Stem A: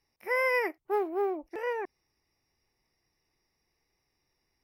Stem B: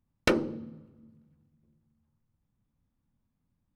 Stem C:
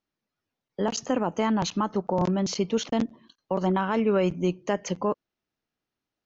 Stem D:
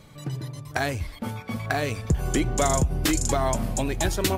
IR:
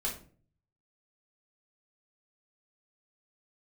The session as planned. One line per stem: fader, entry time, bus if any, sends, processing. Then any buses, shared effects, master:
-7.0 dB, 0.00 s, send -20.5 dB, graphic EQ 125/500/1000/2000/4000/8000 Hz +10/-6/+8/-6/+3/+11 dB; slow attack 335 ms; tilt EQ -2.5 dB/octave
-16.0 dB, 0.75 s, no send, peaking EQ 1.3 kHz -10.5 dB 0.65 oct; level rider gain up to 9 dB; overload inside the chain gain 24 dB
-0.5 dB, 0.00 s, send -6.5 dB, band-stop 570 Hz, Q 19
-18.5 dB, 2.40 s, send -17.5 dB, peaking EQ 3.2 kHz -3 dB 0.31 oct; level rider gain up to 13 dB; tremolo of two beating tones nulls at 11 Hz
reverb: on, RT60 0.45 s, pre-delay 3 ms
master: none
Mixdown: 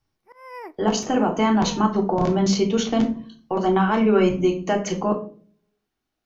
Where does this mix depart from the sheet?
stem C: send -6.5 dB -> -0.5 dB; stem D: muted

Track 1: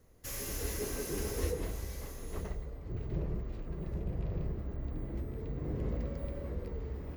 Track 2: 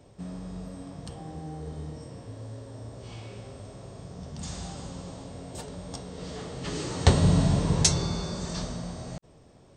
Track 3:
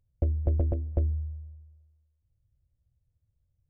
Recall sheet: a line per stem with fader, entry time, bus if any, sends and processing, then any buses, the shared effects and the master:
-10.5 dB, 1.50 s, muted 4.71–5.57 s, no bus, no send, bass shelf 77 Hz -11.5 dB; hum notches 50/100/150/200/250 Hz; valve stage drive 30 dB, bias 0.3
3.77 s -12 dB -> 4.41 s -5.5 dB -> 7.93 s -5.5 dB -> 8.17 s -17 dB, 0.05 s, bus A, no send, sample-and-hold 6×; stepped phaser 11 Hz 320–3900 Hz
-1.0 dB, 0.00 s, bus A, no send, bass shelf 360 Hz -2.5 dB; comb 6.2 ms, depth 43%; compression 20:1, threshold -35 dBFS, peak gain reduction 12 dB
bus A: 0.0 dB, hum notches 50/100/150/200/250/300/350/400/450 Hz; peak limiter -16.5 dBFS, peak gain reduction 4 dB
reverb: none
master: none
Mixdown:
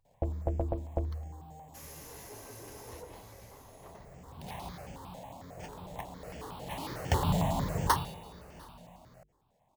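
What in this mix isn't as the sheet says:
stem 3: missing compression 20:1, threshold -35 dBFS, peak gain reduction 12 dB; master: extra FFT filter 430 Hz 0 dB, 890 Hz +12 dB, 1.3 kHz +3 dB

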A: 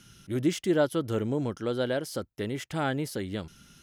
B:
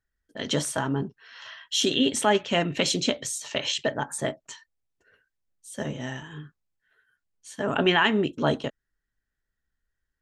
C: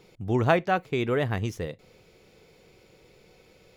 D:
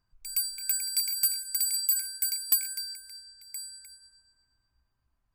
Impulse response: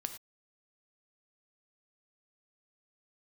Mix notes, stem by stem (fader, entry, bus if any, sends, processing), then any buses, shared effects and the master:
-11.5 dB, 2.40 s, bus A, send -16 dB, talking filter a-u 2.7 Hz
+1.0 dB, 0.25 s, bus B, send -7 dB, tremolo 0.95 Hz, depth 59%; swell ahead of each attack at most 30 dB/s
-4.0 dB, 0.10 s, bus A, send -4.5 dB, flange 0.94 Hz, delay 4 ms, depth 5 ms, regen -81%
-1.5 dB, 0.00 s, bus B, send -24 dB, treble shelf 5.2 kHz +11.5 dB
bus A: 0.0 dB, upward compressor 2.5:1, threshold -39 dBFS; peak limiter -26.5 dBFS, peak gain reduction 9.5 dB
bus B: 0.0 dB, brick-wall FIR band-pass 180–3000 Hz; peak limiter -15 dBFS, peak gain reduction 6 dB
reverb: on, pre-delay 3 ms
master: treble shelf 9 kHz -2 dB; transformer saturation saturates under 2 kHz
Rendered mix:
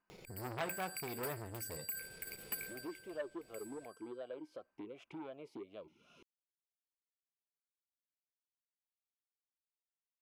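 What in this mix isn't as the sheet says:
stem B: muted; stem C -4.0 dB -> -13.5 dB; master: missing treble shelf 9 kHz -2 dB

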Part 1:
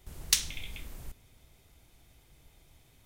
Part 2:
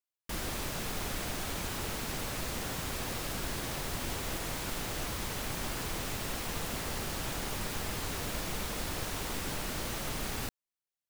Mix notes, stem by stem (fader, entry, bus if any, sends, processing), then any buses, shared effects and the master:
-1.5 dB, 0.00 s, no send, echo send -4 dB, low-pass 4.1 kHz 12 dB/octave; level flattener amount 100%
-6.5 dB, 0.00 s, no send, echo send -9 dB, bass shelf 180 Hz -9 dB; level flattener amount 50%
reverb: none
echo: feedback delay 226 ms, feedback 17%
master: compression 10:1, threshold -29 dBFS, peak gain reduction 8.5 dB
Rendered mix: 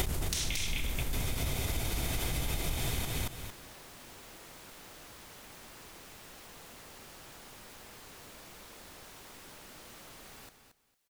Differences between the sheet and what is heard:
stem 1: missing low-pass 4.1 kHz 12 dB/octave; stem 2 -6.5 dB -> -14.0 dB

